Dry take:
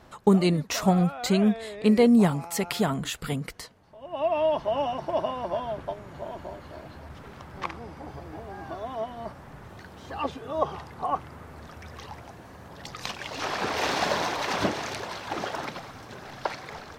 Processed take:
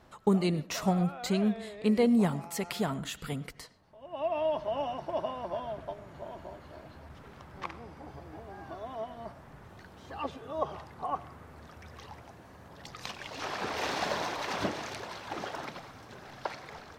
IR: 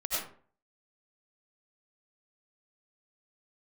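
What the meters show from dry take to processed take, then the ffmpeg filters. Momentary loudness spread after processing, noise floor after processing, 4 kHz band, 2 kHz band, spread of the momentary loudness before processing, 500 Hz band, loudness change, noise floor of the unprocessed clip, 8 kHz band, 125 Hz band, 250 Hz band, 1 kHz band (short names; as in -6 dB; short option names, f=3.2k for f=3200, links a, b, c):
22 LU, -53 dBFS, -6.0 dB, -6.0 dB, 22 LU, -6.0 dB, -6.0 dB, -47 dBFS, -6.5 dB, -6.0 dB, -6.0 dB, -6.0 dB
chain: -filter_complex "[0:a]asplit=2[a][b];[1:a]atrim=start_sample=2205,lowpass=5.3k[c];[b][c]afir=irnorm=-1:irlink=0,volume=-22.5dB[d];[a][d]amix=inputs=2:normalize=0,volume=-6.5dB"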